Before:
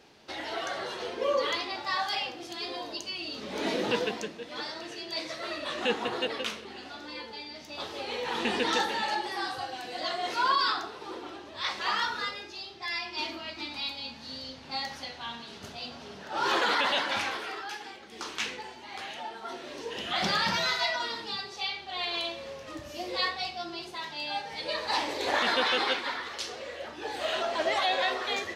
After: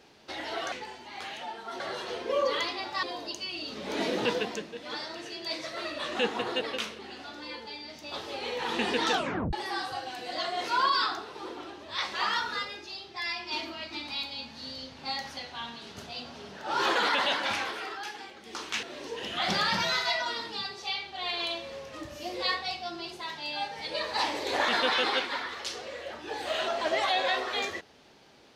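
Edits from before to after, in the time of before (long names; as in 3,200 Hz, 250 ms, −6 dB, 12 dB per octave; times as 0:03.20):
0:01.95–0:02.69: remove
0:08.77: tape stop 0.42 s
0:18.49–0:19.57: move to 0:00.72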